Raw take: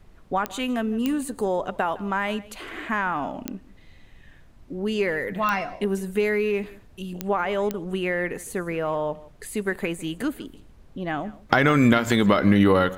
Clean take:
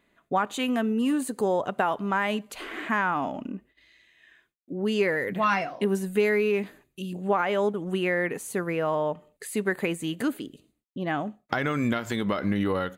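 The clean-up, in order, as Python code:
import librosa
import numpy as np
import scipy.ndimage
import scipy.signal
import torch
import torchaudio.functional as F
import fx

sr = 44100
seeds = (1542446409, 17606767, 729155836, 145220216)

y = fx.fix_declick_ar(x, sr, threshold=10.0)
y = fx.noise_reduce(y, sr, print_start_s=4.06, print_end_s=4.56, reduce_db=16.0)
y = fx.fix_echo_inverse(y, sr, delay_ms=158, level_db=-20.0)
y = fx.fix_level(y, sr, at_s=11.33, step_db=-8.5)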